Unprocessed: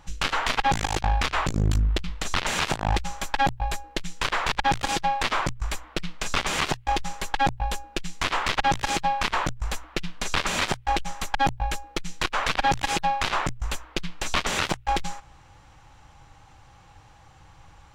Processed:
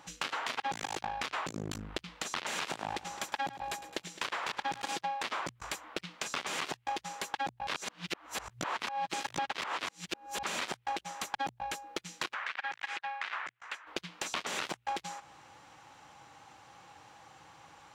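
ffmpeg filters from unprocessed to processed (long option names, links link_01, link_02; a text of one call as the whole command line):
ffmpeg -i in.wav -filter_complex "[0:a]asettb=1/sr,asplit=3[link_01][link_02][link_03];[link_01]atrim=end=2.564[link_04];[link_02]atrim=start=2.56:end=4.82,asetpts=PTS-STARTPTS,afade=type=in:duration=0.004:curve=qsin,afade=type=out:start_time=2.256:duration=0.004:curve=qsin,aecho=1:1:106|212|318|424|530:0.15|0.0853|0.0486|0.0277|0.0158,atrim=end_sample=99666[link_05];[link_03]atrim=start=4.816[link_06];[link_04][link_05]acrossfade=duration=0.004:curve1=hsin:curve2=qsin[link_07];[link_07][link_06]acrossfade=duration=0.004:curve1=qsin:curve2=hsin,asplit=3[link_08][link_09][link_10];[link_08]afade=type=out:start_time=12.33:duration=0.02[link_11];[link_09]bandpass=frequency=1800:width_type=q:width=1.8,afade=type=in:start_time=12.33:duration=0.02,afade=type=out:start_time=13.86:duration=0.02[link_12];[link_10]afade=type=in:start_time=13.86:duration=0.02[link_13];[link_11][link_12][link_13]amix=inputs=3:normalize=0,asplit=3[link_14][link_15][link_16];[link_14]atrim=end=7.672[link_17];[link_15]atrim=start=7.668:end=10.432,asetpts=PTS-STARTPTS,areverse[link_18];[link_16]atrim=start=10.428[link_19];[link_17][link_18]acrossfade=duration=0.004:curve1=hsin:curve2=hsin[link_20];[link_20][link_19]acrossfade=duration=0.004:curve1=hsin:curve2=hsin,highpass=230,acompressor=threshold=-36dB:ratio=3" out.wav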